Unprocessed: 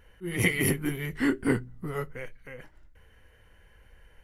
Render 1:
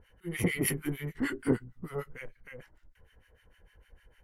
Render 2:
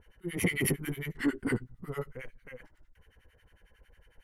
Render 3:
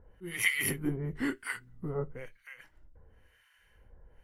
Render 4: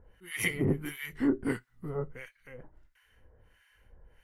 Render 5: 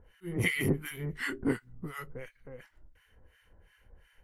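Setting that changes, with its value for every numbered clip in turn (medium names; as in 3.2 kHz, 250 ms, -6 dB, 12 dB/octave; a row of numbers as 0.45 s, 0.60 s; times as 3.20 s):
harmonic tremolo, rate: 6.6 Hz, 11 Hz, 1 Hz, 1.5 Hz, 2.8 Hz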